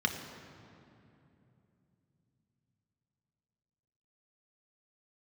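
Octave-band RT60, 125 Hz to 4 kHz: 5.1, 4.3, 3.1, 2.6, 2.3, 1.7 s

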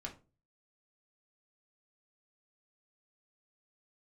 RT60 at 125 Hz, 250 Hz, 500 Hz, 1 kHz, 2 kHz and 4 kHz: 0.55, 0.45, 0.35, 0.30, 0.25, 0.20 s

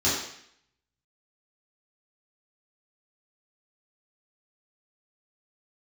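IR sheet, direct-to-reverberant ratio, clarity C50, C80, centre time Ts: -10.0 dB, 2.0 dB, 5.0 dB, 55 ms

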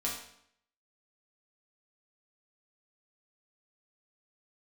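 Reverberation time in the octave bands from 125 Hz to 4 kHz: 0.70, 0.70, 0.70, 0.70, 0.65, 0.60 s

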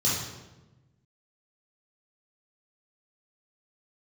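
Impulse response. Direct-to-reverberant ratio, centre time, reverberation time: -8.5 dB, 68 ms, 1.1 s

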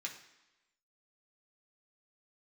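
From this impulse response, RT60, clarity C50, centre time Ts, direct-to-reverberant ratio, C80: 1.0 s, 8.5 dB, 20 ms, -1.0 dB, 11.5 dB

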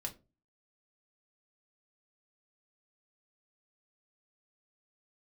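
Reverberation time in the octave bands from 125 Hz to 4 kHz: 0.45, 0.45, 0.35, 0.25, 0.20, 0.20 s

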